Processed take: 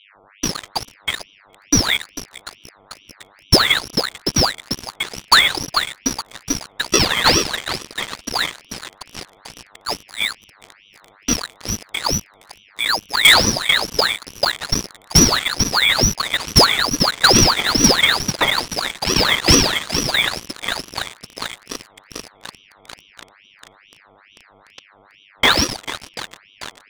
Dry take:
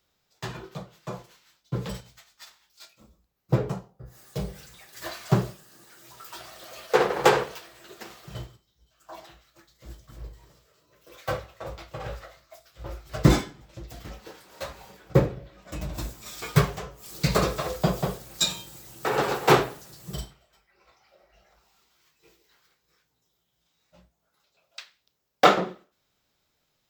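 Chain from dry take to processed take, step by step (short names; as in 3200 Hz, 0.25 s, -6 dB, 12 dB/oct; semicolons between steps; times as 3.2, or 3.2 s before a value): FFT order left unsorted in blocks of 64 samples; band shelf 580 Hz -8.5 dB 1.1 oct; swung echo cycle 0.737 s, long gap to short 1.5:1, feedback 73%, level -14 dB; reverb RT60 1.0 s, pre-delay 93 ms, DRR 11.5 dB; inverted band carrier 2900 Hz; sample leveller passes 5; buzz 100 Hz, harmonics 8, -50 dBFS -4 dB/oct; ring modulator with a swept carrier 1800 Hz, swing 70%, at 2.3 Hz; gain +1.5 dB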